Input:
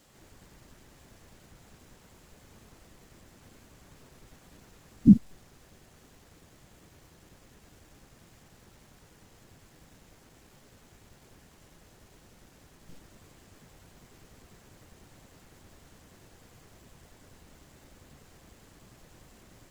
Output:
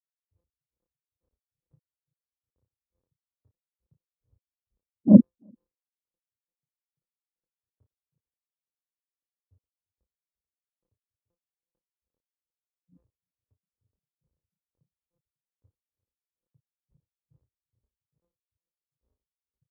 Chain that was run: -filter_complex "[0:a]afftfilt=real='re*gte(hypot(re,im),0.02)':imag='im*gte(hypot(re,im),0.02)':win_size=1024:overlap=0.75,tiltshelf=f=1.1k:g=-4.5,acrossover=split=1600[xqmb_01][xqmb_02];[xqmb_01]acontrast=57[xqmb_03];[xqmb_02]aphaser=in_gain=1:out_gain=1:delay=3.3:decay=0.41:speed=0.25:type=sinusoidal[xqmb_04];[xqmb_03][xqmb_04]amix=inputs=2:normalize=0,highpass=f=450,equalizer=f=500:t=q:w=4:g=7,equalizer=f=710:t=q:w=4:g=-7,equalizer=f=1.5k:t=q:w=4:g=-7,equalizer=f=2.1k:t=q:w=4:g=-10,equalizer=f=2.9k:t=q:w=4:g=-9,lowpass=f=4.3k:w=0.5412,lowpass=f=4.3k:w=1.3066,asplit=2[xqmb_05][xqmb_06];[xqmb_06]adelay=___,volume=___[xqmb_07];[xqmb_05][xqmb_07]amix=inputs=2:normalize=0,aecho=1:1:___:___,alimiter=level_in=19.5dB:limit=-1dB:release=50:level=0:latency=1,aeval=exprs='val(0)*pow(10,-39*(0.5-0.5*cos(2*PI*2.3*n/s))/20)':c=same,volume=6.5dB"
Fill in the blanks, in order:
33, -3dB, 341, 0.106